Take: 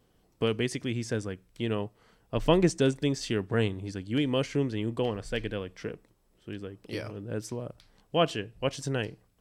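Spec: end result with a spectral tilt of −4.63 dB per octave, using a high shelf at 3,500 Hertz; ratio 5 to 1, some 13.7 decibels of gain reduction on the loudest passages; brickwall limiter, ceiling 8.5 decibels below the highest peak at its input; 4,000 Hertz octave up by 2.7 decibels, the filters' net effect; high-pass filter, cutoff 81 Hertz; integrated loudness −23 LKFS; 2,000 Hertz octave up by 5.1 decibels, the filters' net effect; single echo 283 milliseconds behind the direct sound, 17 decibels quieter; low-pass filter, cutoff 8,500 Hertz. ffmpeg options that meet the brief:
ffmpeg -i in.wav -af "highpass=81,lowpass=8500,equalizer=frequency=2000:width_type=o:gain=7.5,highshelf=frequency=3500:gain=-6.5,equalizer=frequency=4000:width_type=o:gain=4.5,acompressor=threshold=-33dB:ratio=5,alimiter=level_in=3dB:limit=-24dB:level=0:latency=1,volume=-3dB,aecho=1:1:283:0.141,volume=18dB" out.wav

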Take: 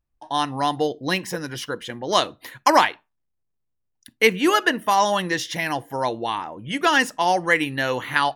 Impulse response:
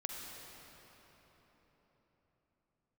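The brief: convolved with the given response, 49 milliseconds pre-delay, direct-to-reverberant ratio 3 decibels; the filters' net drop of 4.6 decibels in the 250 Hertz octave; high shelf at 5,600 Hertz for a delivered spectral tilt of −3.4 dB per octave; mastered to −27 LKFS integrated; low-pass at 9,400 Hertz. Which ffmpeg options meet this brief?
-filter_complex "[0:a]lowpass=9400,equalizer=frequency=250:width_type=o:gain=-6.5,highshelf=frequency=5600:gain=-6.5,asplit=2[link_01][link_02];[1:a]atrim=start_sample=2205,adelay=49[link_03];[link_02][link_03]afir=irnorm=-1:irlink=0,volume=-3.5dB[link_04];[link_01][link_04]amix=inputs=2:normalize=0,volume=-5.5dB"

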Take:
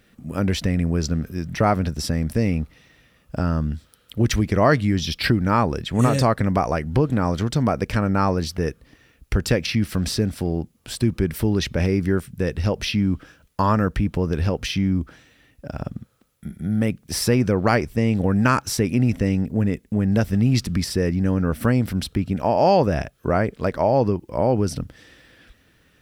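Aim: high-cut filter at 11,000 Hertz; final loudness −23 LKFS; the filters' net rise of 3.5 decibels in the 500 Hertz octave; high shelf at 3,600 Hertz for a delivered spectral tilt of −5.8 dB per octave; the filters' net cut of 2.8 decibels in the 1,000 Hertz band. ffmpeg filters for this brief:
ffmpeg -i in.wav -af "lowpass=11000,equalizer=frequency=500:width_type=o:gain=6,equalizer=frequency=1000:width_type=o:gain=-7,highshelf=frequency=3600:gain=6,volume=-2.5dB" out.wav

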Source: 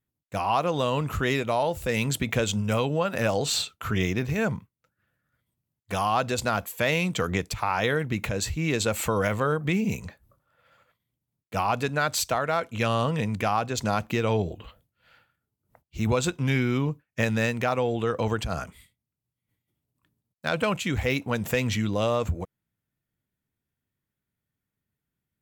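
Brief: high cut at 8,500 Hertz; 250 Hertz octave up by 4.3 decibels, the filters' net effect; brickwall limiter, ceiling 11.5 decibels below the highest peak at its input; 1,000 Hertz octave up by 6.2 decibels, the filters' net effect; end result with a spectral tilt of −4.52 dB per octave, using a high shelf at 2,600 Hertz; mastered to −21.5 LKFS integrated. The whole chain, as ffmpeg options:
ffmpeg -i in.wav -af "lowpass=8500,equalizer=frequency=250:width_type=o:gain=5,equalizer=frequency=1000:width_type=o:gain=6.5,highshelf=frequency=2600:gain=7,volume=5dB,alimiter=limit=-10dB:level=0:latency=1" out.wav

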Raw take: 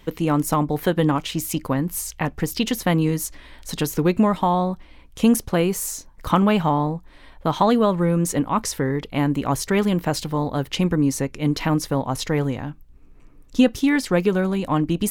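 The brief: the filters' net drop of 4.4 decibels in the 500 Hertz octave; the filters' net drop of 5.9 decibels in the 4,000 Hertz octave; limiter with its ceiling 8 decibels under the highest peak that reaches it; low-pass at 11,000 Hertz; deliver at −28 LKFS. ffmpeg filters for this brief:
ffmpeg -i in.wav -af "lowpass=11000,equalizer=frequency=500:width_type=o:gain=-5.5,equalizer=frequency=4000:width_type=o:gain=-8.5,volume=-3dB,alimiter=limit=-16dB:level=0:latency=1" out.wav

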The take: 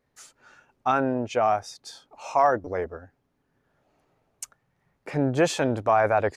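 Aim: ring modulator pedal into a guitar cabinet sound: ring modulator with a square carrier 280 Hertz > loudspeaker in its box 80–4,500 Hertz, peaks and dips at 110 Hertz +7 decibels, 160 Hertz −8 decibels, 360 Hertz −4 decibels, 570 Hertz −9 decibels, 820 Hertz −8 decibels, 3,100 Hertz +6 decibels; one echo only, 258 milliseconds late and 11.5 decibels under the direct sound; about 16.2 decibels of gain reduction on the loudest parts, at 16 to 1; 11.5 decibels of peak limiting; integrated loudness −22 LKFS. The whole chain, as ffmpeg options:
ffmpeg -i in.wav -af "acompressor=threshold=-32dB:ratio=16,alimiter=level_in=7dB:limit=-24dB:level=0:latency=1,volume=-7dB,aecho=1:1:258:0.266,aeval=exprs='val(0)*sgn(sin(2*PI*280*n/s))':channel_layout=same,highpass=80,equalizer=frequency=110:width_type=q:width=4:gain=7,equalizer=frequency=160:width_type=q:width=4:gain=-8,equalizer=frequency=360:width_type=q:width=4:gain=-4,equalizer=frequency=570:width_type=q:width=4:gain=-9,equalizer=frequency=820:width_type=q:width=4:gain=-8,equalizer=frequency=3100:width_type=q:width=4:gain=6,lowpass=frequency=4500:width=0.5412,lowpass=frequency=4500:width=1.3066,volume=22dB" out.wav

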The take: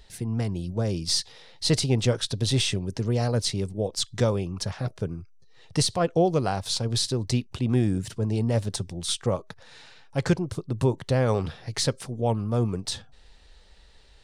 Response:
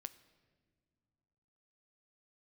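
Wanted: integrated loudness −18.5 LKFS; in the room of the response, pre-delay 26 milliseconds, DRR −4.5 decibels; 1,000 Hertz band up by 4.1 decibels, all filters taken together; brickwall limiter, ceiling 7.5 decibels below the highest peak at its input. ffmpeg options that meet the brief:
-filter_complex "[0:a]equalizer=frequency=1000:width_type=o:gain=6,alimiter=limit=-16.5dB:level=0:latency=1,asplit=2[link_01][link_02];[1:a]atrim=start_sample=2205,adelay=26[link_03];[link_02][link_03]afir=irnorm=-1:irlink=0,volume=9.5dB[link_04];[link_01][link_04]amix=inputs=2:normalize=0,volume=3dB"

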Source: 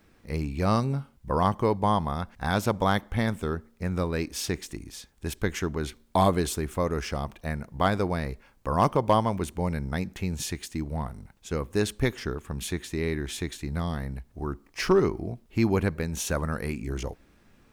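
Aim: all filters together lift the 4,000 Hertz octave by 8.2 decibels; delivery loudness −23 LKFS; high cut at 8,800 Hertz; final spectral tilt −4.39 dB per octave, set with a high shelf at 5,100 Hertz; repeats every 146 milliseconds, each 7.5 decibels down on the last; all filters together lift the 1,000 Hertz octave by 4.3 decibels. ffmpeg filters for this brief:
ffmpeg -i in.wav -af "lowpass=8800,equalizer=frequency=1000:width_type=o:gain=4.5,equalizer=frequency=4000:width_type=o:gain=6,highshelf=frequency=5100:gain=9,aecho=1:1:146|292|438|584|730:0.422|0.177|0.0744|0.0312|0.0131,volume=2.5dB" out.wav

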